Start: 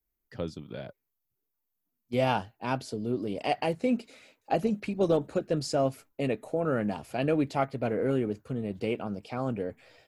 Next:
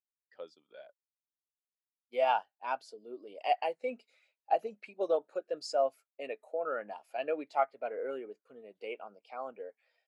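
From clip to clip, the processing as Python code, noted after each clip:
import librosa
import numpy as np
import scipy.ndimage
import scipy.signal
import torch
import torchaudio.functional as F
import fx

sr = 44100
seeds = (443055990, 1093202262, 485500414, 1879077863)

y = scipy.signal.sosfilt(scipy.signal.butter(2, 700.0, 'highpass', fs=sr, output='sos'), x)
y = fx.spectral_expand(y, sr, expansion=1.5)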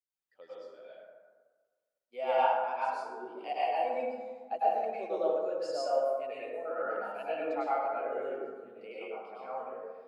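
y = fx.rev_plate(x, sr, seeds[0], rt60_s=1.5, hf_ratio=0.4, predelay_ms=90, drr_db=-9.5)
y = y * librosa.db_to_amplitude(-8.5)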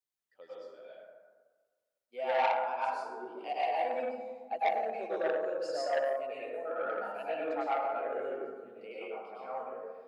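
y = fx.transformer_sat(x, sr, knee_hz=1300.0)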